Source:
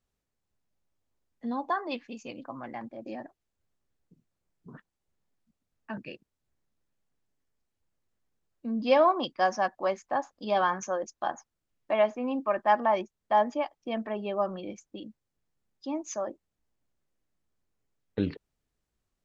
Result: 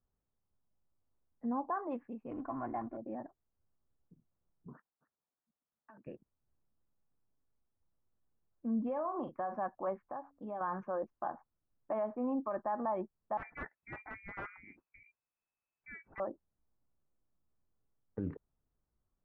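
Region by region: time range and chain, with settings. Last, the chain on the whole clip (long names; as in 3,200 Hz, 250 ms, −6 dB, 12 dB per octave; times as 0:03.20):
0:02.31–0:02.97: mu-law and A-law mismatch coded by mu + comb filter 2.8 ms, depth 72% + highs frequency-modulated by the lows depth 0.1 ms
0:04.73–0:06.07: high-pass filter 900 Hz 6 dB per octave + downward compressor 12 to 1, threshold −48 dBFS + single-tap delay 276 ms −18.5 dB
0:08.85–0:09.56: double-tracking delay 39 ms −10.5 dB + downward compressor 10 to 1, threshold −29 dBFS
0:10.06–0:10.61: downward compressor 3 to 1, threshold −38 dBFS + hum removal 93.81 Hz, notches 3
0:13.37–0:16.20: voice inversion scrambler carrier 2,600 Hz + wrap-around overflow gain 23.5 dB
whole clip: low-pass filter 1,300 Hz 24 dB per octave; parametric band 480 Hz −4 dB 2.6 octaves; brickwall limiter −27 dBFS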